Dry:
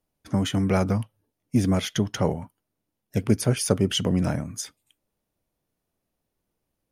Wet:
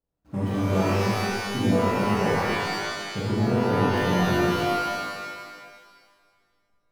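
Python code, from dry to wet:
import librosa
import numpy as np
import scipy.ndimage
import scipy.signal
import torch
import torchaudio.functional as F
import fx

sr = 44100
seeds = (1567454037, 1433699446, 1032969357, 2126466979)

y = scipy.ndimage.median_filter(x, 25, mode='constant')
y = fx.env_lowpass_down(y, sr, base_hz=440.0, full_db=-16.5, at=(3.21, 3.87))
y = fx.rev_shimmer(y, sr, seeds[0], rt60_s=1.7, semitones=12, shimmer_db=-2, drr_db=-8.0)
y = F.gain(torch.from_numpy(y), -9.0).numpy()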